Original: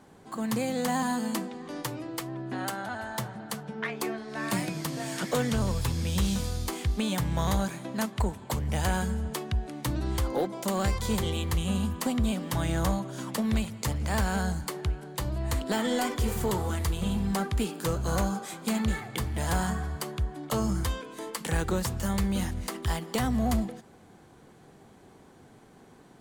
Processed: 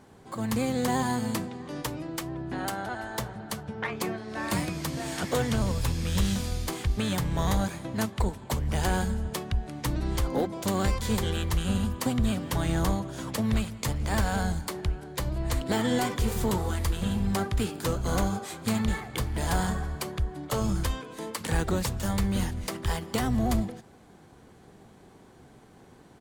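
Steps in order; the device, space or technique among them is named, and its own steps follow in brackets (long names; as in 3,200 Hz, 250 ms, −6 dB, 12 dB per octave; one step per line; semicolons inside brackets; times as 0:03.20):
octave pedal (pitch-shifted copies added −12 semitones −6 dB)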